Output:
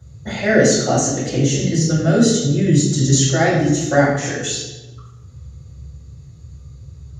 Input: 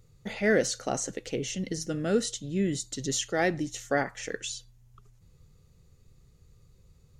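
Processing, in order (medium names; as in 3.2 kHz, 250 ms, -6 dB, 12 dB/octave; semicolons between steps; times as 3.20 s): in parallel at -2.5 dB: peak limiter -22.5 dBFS, peak gain reduction 10 dB; on the sum: reverberation RT60 1.1 s, pre-delay 3 ms, DRR -9 dB; trim -8 dB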